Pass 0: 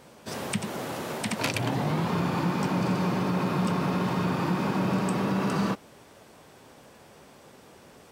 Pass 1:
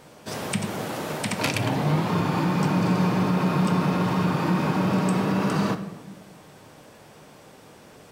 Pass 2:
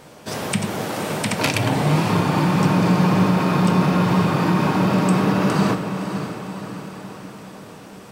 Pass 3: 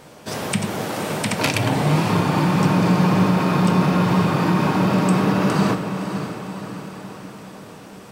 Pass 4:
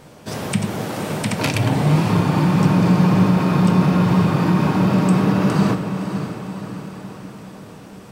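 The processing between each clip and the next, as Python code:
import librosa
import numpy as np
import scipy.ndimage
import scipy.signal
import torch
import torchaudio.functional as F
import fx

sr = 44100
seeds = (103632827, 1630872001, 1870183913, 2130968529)

y1 = fx.room_shoebox(x, sr, seeds[0], volume_m3=590.0, walls='mixed', distance_m=0.51)
y1 = y1 * librosa.db_to_amplitude(2.5)
y2 = fx.echo_diffused(y1, sr, ms=555, feedback_pct=55, wet_db=-9)
y2 = y2 * librosa.db_to_amplitude(4.5)
y3 = y2
y4 = fx.low_shelf(y3, sr, hz=230.0, db=7.5)
y4 = y4 * librosa.db_to_amplitude(-2.0)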